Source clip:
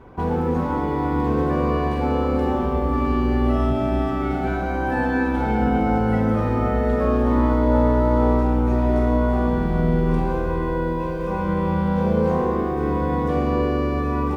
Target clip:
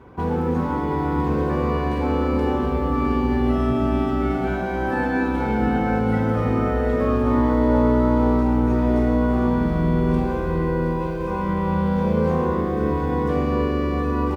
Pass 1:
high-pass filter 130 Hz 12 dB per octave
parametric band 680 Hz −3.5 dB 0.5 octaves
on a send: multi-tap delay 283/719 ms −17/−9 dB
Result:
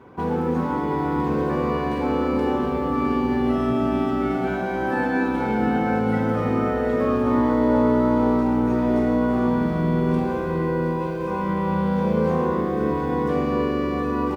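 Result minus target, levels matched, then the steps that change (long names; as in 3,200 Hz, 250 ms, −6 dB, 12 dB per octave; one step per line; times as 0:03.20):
125 Hz band −3.0 dB
change: high-pass filter 50 Hz 12 dB per octave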